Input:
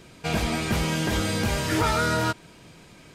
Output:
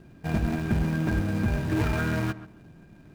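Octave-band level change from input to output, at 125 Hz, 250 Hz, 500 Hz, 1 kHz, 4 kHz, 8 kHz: +1.5, +0.5, -5.5, -9.5, -14.0, -15.0 dB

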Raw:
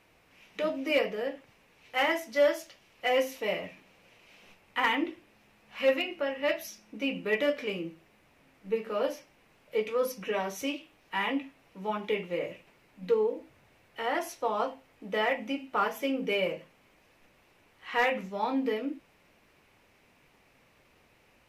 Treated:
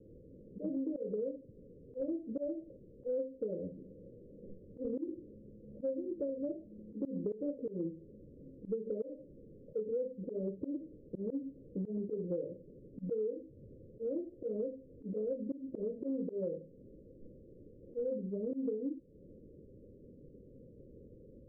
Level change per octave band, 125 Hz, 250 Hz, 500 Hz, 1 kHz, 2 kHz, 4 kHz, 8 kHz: +1.5 dB, -3.0 dB, -7.5 dB, under -35 dB, under -40 dB, under -40 dB, under -30 dB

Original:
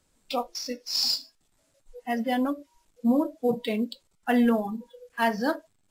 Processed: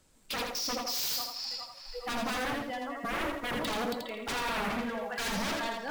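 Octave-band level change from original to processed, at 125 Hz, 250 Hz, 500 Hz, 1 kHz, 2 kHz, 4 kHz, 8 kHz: -2.0, -11.5, -7.0, -3.0, +0.5, -3.0, +2.0 dB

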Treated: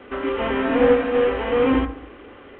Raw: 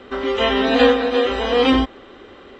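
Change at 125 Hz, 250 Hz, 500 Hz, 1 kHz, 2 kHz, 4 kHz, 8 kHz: 0.0 dB, -2.5 dB, -1.5 dB, -4.5 dB, -4.5 dB, -13.5 dB, n/a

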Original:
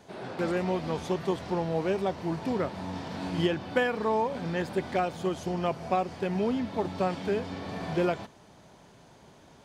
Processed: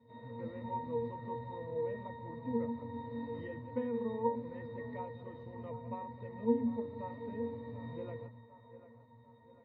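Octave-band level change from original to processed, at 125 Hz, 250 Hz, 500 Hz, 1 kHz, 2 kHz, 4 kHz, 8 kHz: -10.5 dB, -8.0 dB, -9.0 dB, -10.5 dB, -17.5 dB, under -20 dB, under -30 dB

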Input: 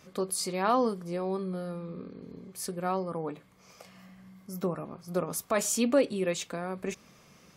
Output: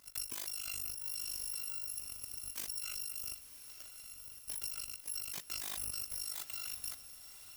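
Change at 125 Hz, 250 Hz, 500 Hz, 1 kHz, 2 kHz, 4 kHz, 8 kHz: -22.5, -33.0, -35.0, -25.0, -10.5, -1.5, -3.5 dB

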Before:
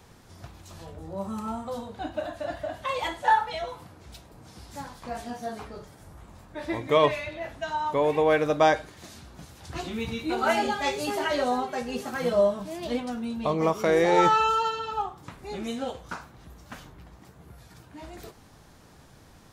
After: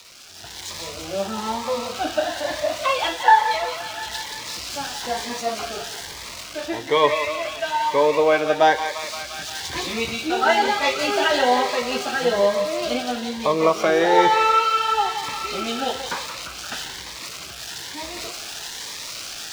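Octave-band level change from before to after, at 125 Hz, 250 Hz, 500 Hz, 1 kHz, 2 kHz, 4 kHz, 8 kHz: -2.5, +2.5, +5.0, +7.0, +8.5, +12.0, +13.5 dB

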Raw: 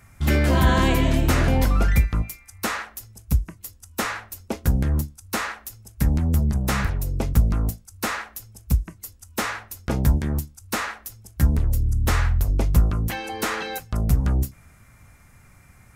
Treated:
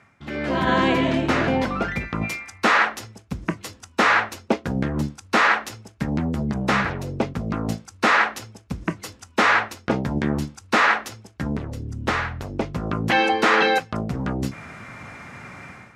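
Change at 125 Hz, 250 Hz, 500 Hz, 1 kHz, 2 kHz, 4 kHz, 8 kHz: -7.0, +2.5, +5.5, +8.0, +9.0, +4.5, -4.5 dB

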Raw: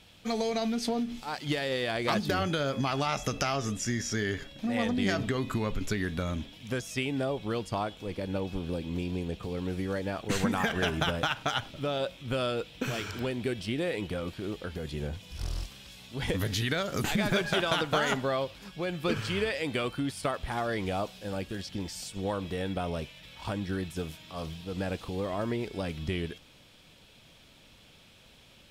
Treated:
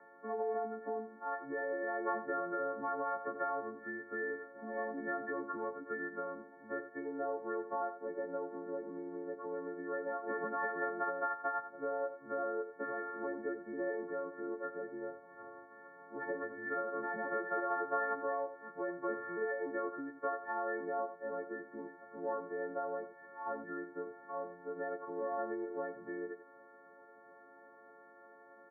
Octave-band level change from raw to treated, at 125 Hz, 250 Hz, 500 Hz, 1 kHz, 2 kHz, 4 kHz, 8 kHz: -29.5 dB, -12.0 dB, -5.0 dB, -3.5 dB, -8.0 dB, under -40 dB, under -40 dB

